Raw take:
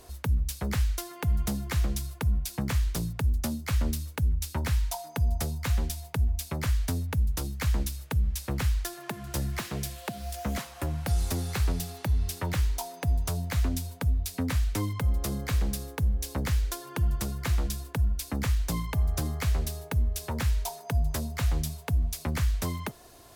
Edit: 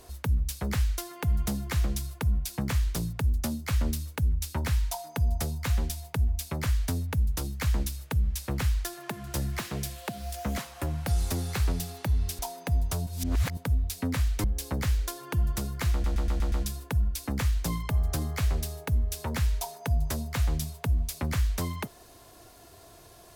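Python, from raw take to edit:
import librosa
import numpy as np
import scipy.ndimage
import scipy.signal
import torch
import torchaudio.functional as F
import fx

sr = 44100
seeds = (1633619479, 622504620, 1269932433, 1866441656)

y = fx.edit(x, sr, fx.cut(start_s=12.39, length_s=0.36),
    fx.reverse_span(start_s=13.43, length_s=0.5),
    fx.cut(start_s=14.8, length_s=1.28),
    fx.stutter(start_s=17.56, slice_s=0.12, count=6), tone=tone)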